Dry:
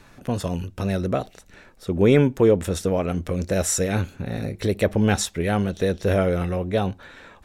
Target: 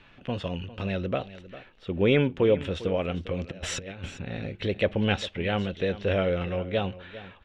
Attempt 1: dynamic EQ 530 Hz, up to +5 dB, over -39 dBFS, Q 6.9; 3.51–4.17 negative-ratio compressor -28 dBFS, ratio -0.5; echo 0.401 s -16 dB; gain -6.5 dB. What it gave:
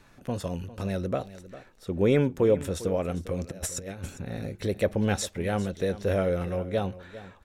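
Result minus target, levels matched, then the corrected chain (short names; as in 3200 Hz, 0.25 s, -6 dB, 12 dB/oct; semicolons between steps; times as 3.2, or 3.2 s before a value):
4000 Hz band -6.0 dB
dynamic EQ 530 Hz, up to +5 dB, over -39 dBFS, Q 6.9; synth low-pass 3000 Hz, resonance Q 3.8; 3.51–4.17 negative-ratio compressor -28 dBFS, ratio -0.5; echo 0.401 s -16 dB; gain -6.5 dB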